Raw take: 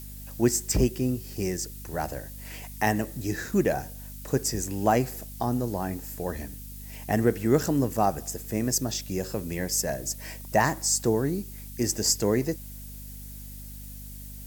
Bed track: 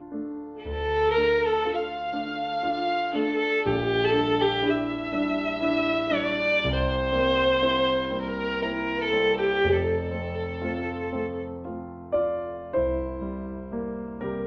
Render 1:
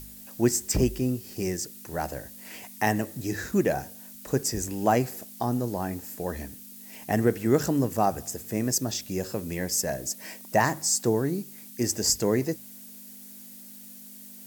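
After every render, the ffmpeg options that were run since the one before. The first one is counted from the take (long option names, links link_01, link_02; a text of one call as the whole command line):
ffmpeg -i in.wav -af "bandreject=frequency=50:width_type=h:width=4,bandreject=frequency=100:width_type=h:width=4,bandreject=frequency=150:width_type=h:width=4" out.wav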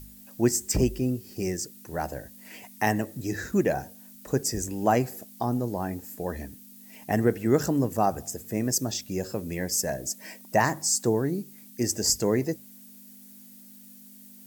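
ffmpeg -i in.wav -af "afftdn=noise_reduction=6:noise_floor=-46" out.wav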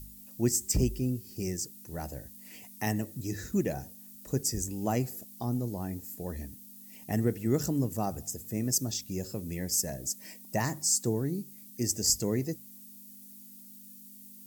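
ffmpeg -i in.wav -af "equalizer=frequency=980:width=0.35:gain=-11,bandreject=frequency=1600:width=14" out.wav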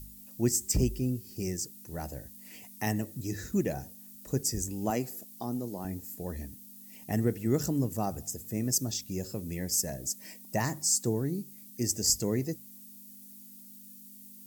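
ffmpeg -i in.wav -filter_complex "[0:a]asettb=1/sr,asplit=3[link_01][link_02][link_03];[link_01]atrim=end=4.904[link_04];[link_02]atrim=start=4.9:end=5.85,asetpts=PTS-STARTPTS,afade=type=in:duration=0.004:curve=qsin,afade=type=out:start_time=0.946:duration=0.004:curve=qsin,highpass=190[link_05];[link_03]atrim=start=5.846[link_06];[link_04][link_05]acrossfade=duration=0.004:curve1=hsin:curve2=qsin[link_07];[link_07][link_06]acrossfade=duration=0.004:curve1=qsin:curve2=hsin" out.wav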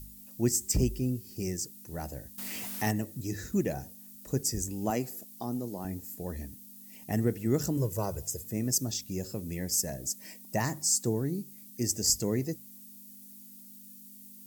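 ffmpeg -i in.wav -filter_complex "[0:a]asettb=1/sr,asplit=3[link_01][link_02][link_03];[link_01]atrim=end=2.384[link_04];[link_02]atrim=start=2.38:end=2.91,asetpts=PTS-STARTPTS,afade=type=in:duration=0.004:curve=qsin,afade=type=out:start_time=0.526:duration=0.004:curve=qsin,aeval=exprs='val(0)+0.5*0.0188*sgn(val(0))':channel_layout=same[link_05];[link_03]atrim=start=2.906[link_06];[link_04][link_05]acrossfade=duration=0.004:curve1=hsin:curve2=qsin[link_07];[link_07][link_06]acrossfade=duration=0.004:curve1=qsin:curve2=hsin,asettb=1/sr,asplit=3[link_08][link_09][link_10];[link_08]atrim=end=7.774[link_11];[link_09]atrim=start=7.77:end=8.44,asetpts=PTS-STARTPTS,afade=type=in:duration=0.004:curve=qsin,afade=type=out:start_time=0.666:duration=0.004:curve=qsin,aecho=1:1:2:0.77,atrim=end_sample=29547[link_12];[link_10]atrim=start=8.436[link_13];[link_11][link_12]acrossfade=duration=0.004:curve1=hsin:curve2=qsin[link_14];[link_14][link_13]acrossfade=duration=0.004:curve1=qsin:curve2=hsin" out.wav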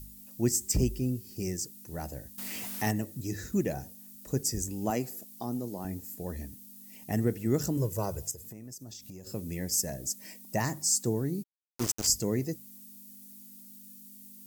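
ffmpeg -i in.wav -filter_complex "[0:a]asettb=1/sr,asplit=3[link_01][link_02][link_03];[link_01]atrim=end=8.314[link_04];[link_02]atrim=start=8.31:end=9.27,asetpts=PTS-STARTPTS,afade=type=in:duration=0.004:curve=qsin,afade=type=out:start_time=0.956:duration=0.004:curve=qsin,acompressor=threshold=-41dB:ratio=12:attack=3.2:release=140:knee=1:detection=peak[link_05];[link_03]atrim=start=9.266[link_06];[link_04][link_05]acrossfade=duration=0.004:curve1=hsin:curve2=qsin[link_07];[link_07][link_06]acrossfade=duration=0.004:curve1=qsin:curve2=hsin,asplit=3[link_08][link_09][link_10];[link_08]afade=type=out:start_time=11.42:duration=0.02[link_11];[link_09]aeval=exprs='val(0)*gte(abs(val(0)),0.0316)':channel_layout=same,afade=type=in:start_time=11.42:duration=0.02,afade=type=out:start_time=12.06:duration=0.02[link_12];[link_10]afade=type=in:start_time=12.06:duration=0.02[link_13];[link_11][link_12][link_13]amix=inputs=3:normalize=0" out.wav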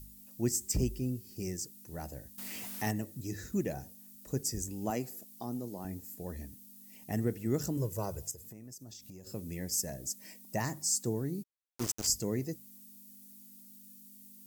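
ffmpeg -i in.wav -af "volume=-4dB" out.wav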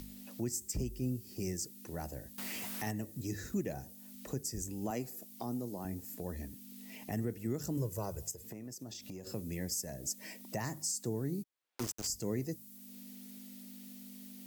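ffmpeg -i in.wav -filter_complex "[0:a]acrossover=split=220|4100[link_01][link_02][link_03];[link_02]acompressor=mode=upward:threshold=-40dB:ratio=2.5[link_04];[link_01][link_04][link_03]amix=inputs=3:normalize=0,alimiter=level_in=2dB:limit=-24dB:level=0:latency=1:release=252,volume=-2dB" out.wav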